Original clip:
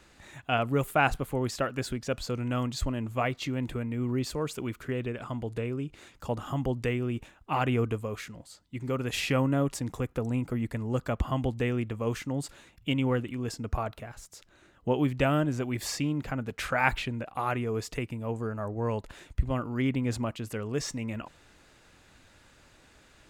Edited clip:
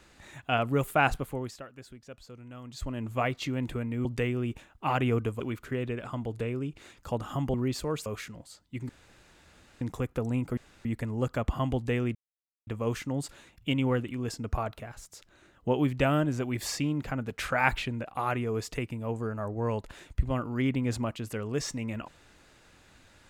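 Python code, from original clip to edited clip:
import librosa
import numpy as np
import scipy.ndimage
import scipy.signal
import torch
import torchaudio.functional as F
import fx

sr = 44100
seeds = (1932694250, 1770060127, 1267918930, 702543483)

y = fx.edit(x, sr, fx.fade_down_up(start_s=1.13, length_s=2.0, db=-15.5, fade_s=0.5),
    fx.swap(start_s=4.05, length_s=0.52, other_s=6.71, other_length_s=1.35),
    fx.room_tone_fill(start_s=8.89, length_s=0.92),
    fx.insert_room_tone(at_s=10.57, length_s=0.28),
    fx.insert_silence(at_s=11.87, length_s=0.52), tone=tone)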